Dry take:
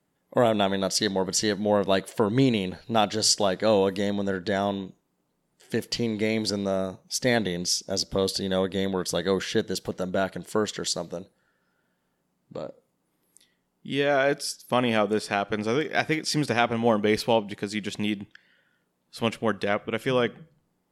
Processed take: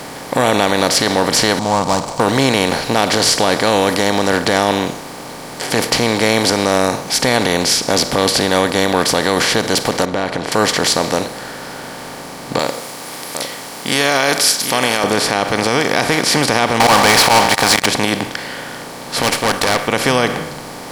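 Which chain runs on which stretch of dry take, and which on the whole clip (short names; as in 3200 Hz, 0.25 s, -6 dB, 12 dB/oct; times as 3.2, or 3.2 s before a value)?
1.59–2.2 median filter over 25 samples + EQ curve 170 Hz 0 dB, 410 Hz -23 dB, 990 Hz +4 dB, 1700 Hz -30 dB, 2900 Hz -22 dB, 7700 Hz +1 dB, 11000 Hz -27 dB
10.05–10.52 compressor 3:1, threshold -39 dBFS + tape spacing loss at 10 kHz 32 dB
12.59–15.04 tilt +4 dB/oct + echo 0.756 s -19.5 dB
16.8–17.86 resonant low shelf 550 Hz -14 dB, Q 3 + auto swell 0.108 s + sample leveller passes 5
19.22–19.88 tilt +3 dB/oct + tube stage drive 29 dB, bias 0.75
whole clip: per-bin compression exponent 0.4; maximiser +5.5 dB; gain -1 dB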